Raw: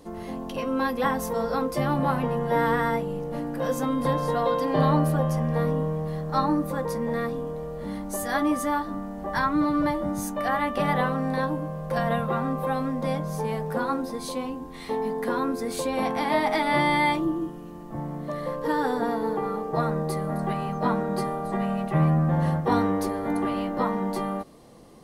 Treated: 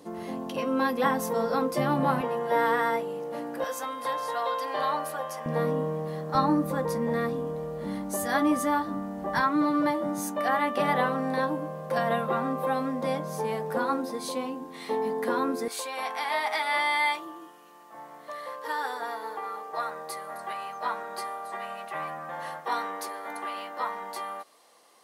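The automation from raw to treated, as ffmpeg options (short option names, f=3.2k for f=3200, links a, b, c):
-af "asetnsamples=n=441:p=0,asendcmd='2.21 highpass f 370;3.64 highpass f 800;5.46 highpass f 210;6.35 highpass f 97;9.4 highpass f 240;15.68 highpass f 940',highpass=160"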